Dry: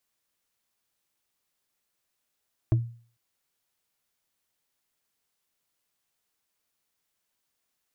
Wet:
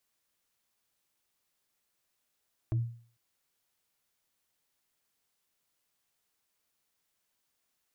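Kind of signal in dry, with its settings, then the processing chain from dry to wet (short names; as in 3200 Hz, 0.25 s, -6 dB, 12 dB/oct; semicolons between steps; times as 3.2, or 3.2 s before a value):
wood hit, lowest mode 117 Hz, decay 0.44 s, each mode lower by 8 dB, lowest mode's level -15.5 dB
limiter -25.5 dBFS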